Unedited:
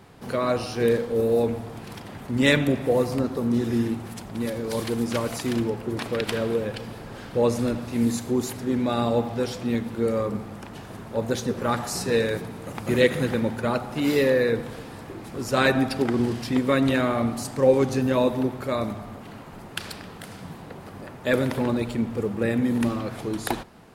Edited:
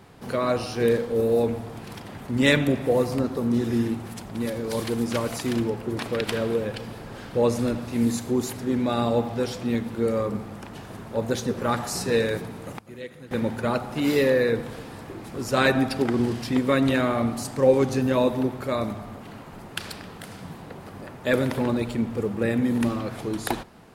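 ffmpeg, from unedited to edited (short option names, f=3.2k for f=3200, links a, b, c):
-filter_complex "[0:a]asplit=3[a][b][c];[a]atrim=end=12.79,asetpts=PTS-STARTPTS,afade=t=out:st=12.33:d=0.46:c=log:silence=0.112202[d];[b]atrim=start=12.79:end=13.31,asetpts=PTS-STARTPTS,volume=-19dB[e];[c]atrim=start=13.31,asetpts=PTS-STARTPTS,afade=t=in:d=0.46:c=log:silence=0.112202[f];[d][e][f]concat=n=3:v=0:a=1"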